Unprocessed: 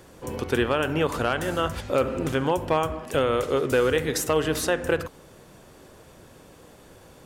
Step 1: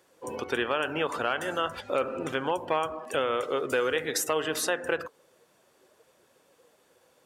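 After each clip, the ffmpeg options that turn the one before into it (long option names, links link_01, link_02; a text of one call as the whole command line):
ffmpeg -i in.wav -filter_complex "[0:a]highpass=frequency=630:poles=1,afftdn=noise_reduction=14:noise_floor=-41,asplit=2[link_01][link_02];[link_02]acompressor=threshold=-34dB:ratio=6,volume=1dB[link_03];[link_01][link_03]amix=inputs=2:normalize=0,volume=-3.5dB" out.wav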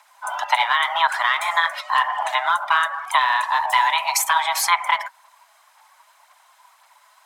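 ffmpeg -i in.wav -af "afreqshift=500,aphaser=in_gain=1:out_gain=1:delay=4.8:decay=0.39:speed=1.9:type=sinusoidal,volume=8dB" out.wav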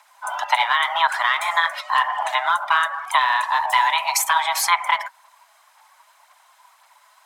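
ffmpeg -i in.wav -af anull out.wav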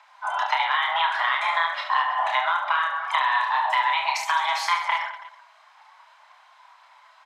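ffmpeg -i in.wav -filter_complex "[0:a]acompressor=threshold=-21dB:ratio=4,acrossover=split=430 5000:gain=0.224 1 0.0631[link_01][link_02][link_03];[link_01][link_02][link_03]amix=inputs=3:normalize=0,aecho=1:1:30|72|130.8|213.1|328.4:0.631|0.398|0.251|0.158|0.1" out.wav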